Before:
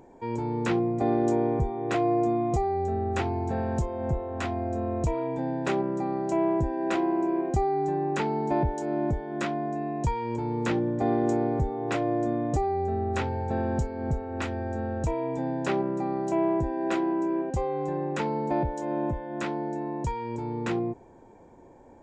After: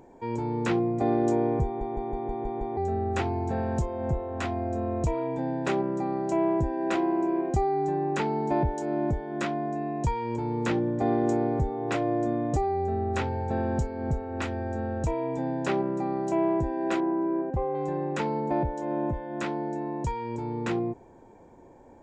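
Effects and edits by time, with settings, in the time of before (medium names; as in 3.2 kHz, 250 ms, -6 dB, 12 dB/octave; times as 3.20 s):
1.65 s: stutter in place 0.16 s, 7 plays
17.00–17.75 s: low-pass 1.6 kHz
18.40–19.14 s: treble shelf 4.4 kHz -8.5 dB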